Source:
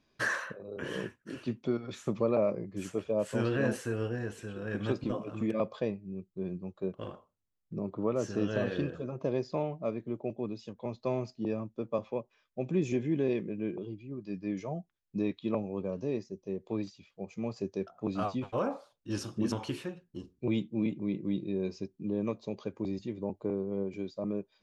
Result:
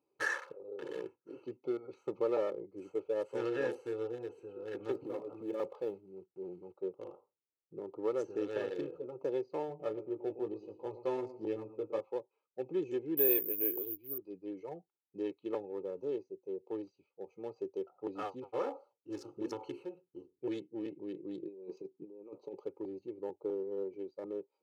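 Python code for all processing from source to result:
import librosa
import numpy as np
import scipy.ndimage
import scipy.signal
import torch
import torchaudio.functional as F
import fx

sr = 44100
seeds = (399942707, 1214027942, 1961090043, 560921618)

y = fx.chain(x, sr, fx.block_float(bits=5),
    fx.lowpass(hz=2400.0, slope=6),
    fx.transient(attack_db=-3, sustain_db=5), at=(4.91, 6.79))
y = fx.chain(y, sr, fx.low_shelf(hz=120.0, db=9.0),
    fx.doubler(ms=19.0, db=-5.0),
    fx.echo_feedback(ms=114, feedback_pct=35, wet_db=-12.0), at=(9.68, 12.01))
y = fx.chain(y, sr, fx.high_shelf(hz=2000.0, db=6.0),
    fx.resample_bad(factor=3, down='filtered', up='zero_stuff'), at=(13.17, 14.18))
y = fx.chain(y, sr, fx.highpass(hz=130.0, slope=24),
    fx.over_compress(threshold_db=-38.0, ratio=-0.5), at=(21.43, 22.6))
y = fx.wiener(y, sr, points=25)
y = scipy.signal.sosfilt(scipy.signal.butter(2, 290.0, 'highpass', fs=sr, output='sos'), y)
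y = y + 0.77 * np.pad(y, (int(2.3 * sr / 1000.0), 0))[:len(y)]
y = y * 10.0 ** (-4.5 / 20.0)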